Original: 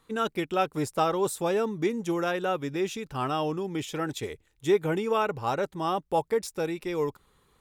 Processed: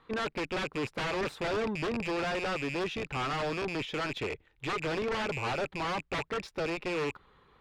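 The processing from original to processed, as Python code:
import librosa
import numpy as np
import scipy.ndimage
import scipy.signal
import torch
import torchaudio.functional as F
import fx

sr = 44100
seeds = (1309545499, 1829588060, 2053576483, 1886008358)

y = fx.rattle_buzz(x, sr, strikes_db=-45.0, level_db=-20.0)
y = fx.low_shelf(y, sr, hz=460.0, db=-7.5)
y = 10.0 ** (-28.5 / 20.0) * (np.abs((y / 10.0 ** (-28.5 / 20.0) + 3.0) % 4.0 - 2.0) - 1.0)
y = fx.air_absorb(y, sr, metres=330.0)
y = fx.cheby_harmonics(y, sr, harmonics=(5,), levels_db=(-18,), full_scale_db=-29.0)
y = y * 10.0 ** (4.0 / 20.0)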